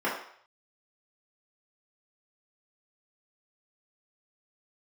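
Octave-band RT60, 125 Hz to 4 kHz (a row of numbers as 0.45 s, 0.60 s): 0.40 s, 0.45 s, 0.60 s, 0.65 s, 0.60 s, 0.60 s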